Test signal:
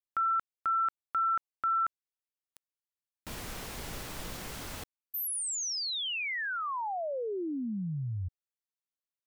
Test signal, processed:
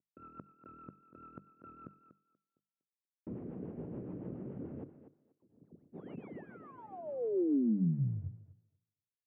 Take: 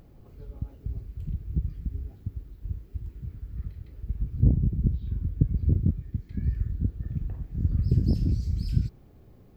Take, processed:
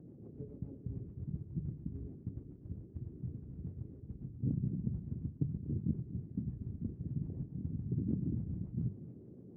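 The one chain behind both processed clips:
variable-slope delta modulation 16 kbit/s
reversed playback
downward compressor 6 to 1, threshold −32 dBFS
reversed playback
rotating-speaker cabinet horn 7 Hz
flat-topped band-pass 230 Hz, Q 0.81
mains-hum notches 50/100/150/200 Hz
on a send: feedback echo with a high-pass in the loop 241 ms, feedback 20%, high-pass 180 Hz, level −11 dB
on the sum: level +7.5 dB

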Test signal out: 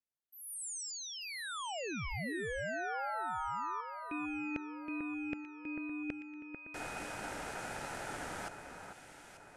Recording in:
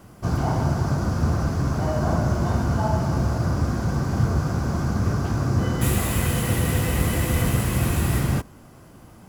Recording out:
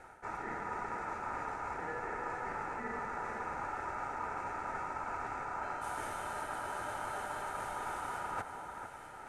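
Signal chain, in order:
high-pass filter 220 Hz 12 dB per octave
tilt shelving filter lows +3 dB, about 800 Hz
ring modulation 1,100 Hz
reversed playback
downward compressor 10 to 1, threshold −35 dBFS
reversed playback
low-pass filter 9,700 Hz 24 dB per octave
parametric band 3,900 Hz −8 dB 1.7 octaves
on a send: delay that swaps between a low-pass and a high-pass 444 ms, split 1,900 Hz, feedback 67%, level −6.5 dB

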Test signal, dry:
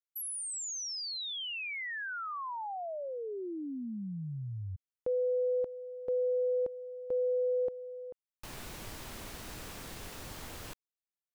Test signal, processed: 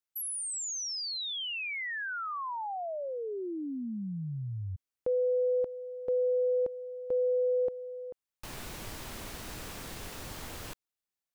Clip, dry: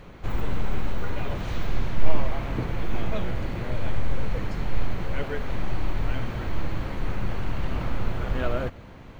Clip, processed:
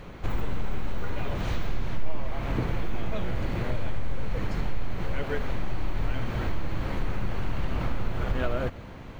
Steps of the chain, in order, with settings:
downward compressor 2.5 to 1, threshold −25 dBFS
level +2.5 dB

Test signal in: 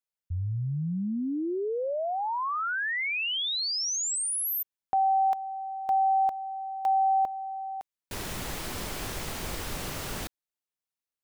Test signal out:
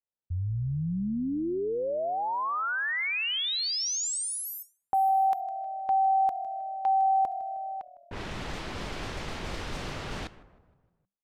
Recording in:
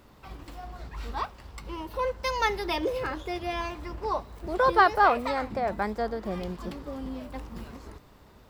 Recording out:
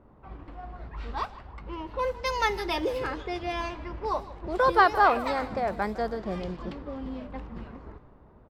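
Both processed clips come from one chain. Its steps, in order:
echo with shifted repeats 156 ms, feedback 53%, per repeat −40 Hz, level −17 dB
low-pass that shuts in the quiet parts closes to 930 Hz, open at −25.5 dBFS

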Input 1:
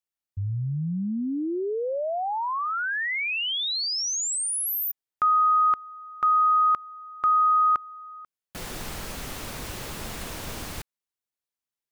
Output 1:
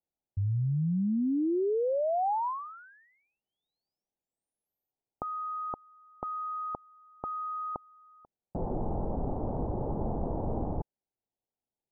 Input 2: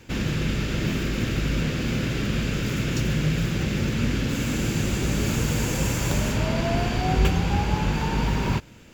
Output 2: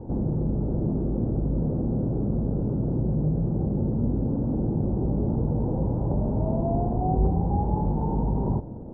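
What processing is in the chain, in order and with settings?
elliptic low-pass filter 840 Hz, stop band 70 dB
in parallel at 0 dB: compressor whose output falls as the input rises −37 dBFS, ratio −1
on the sum: level −1.5 dB

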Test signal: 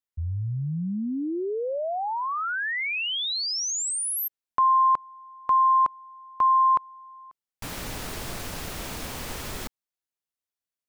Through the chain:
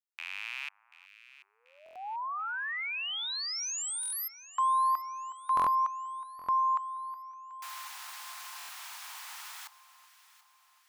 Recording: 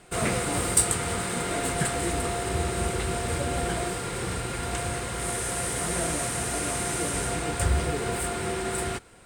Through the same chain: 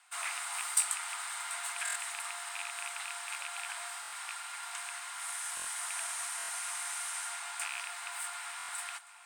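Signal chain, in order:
loose part that buzzes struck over −26 dBFS, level −18 dBFS
Butterworth high-pass 830 Hz 48 dB per octave
delay that swaps between a low-pass and a high-pass 368 ms, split 1,300 Hz, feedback 69%, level −13.5 dB
buffer that repeats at 0:01.84/0:04.01/0:05.55/0:06.37/0:08.57, samples 1,024, times 4
level −7 dB

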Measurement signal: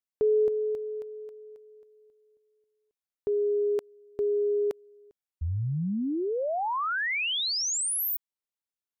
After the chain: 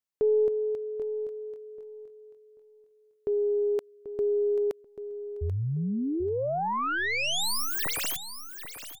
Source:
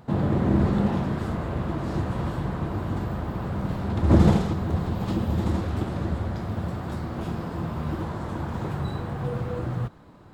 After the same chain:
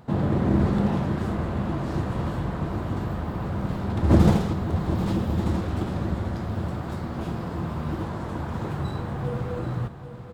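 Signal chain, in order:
stylus tracing distortion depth 0.097 ms
repeating echo 787 ms, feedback 24%, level −11.5 dB

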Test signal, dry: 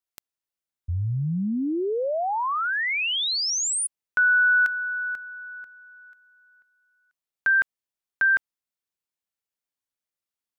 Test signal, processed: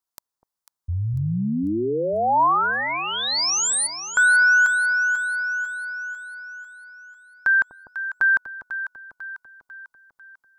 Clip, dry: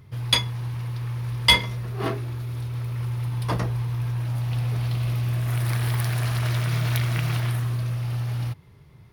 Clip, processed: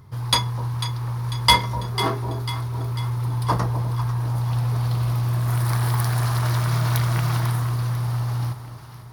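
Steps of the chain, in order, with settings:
drawn EQ curve 620 Hz 0 dB, 970 Hz +8 dB, 2,600 Hz −7 dB, 4,600 Hz +2 dB
on a send: delay that swaps between a low-pass and a high-pass 248 ms, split 830 Hz, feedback 71%, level −8 dB
on the sum: level +1.5 dB

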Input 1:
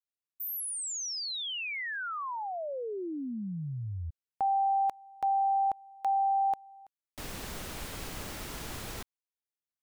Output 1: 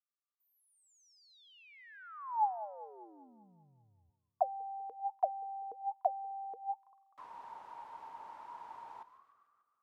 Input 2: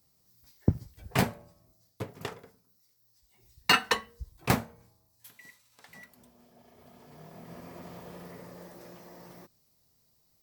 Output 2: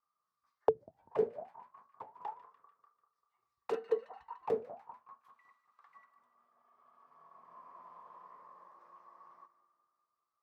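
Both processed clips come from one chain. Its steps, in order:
echo with a time of its own for lows and highs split 1,300 Hz, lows 196 ms, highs 147 ms, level −14.5 dB
wrap-around overflow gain 12.5 dB
envelope filter 440–1,200 Hz, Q 19, down, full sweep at −24 dBFS
level +10.5 dB

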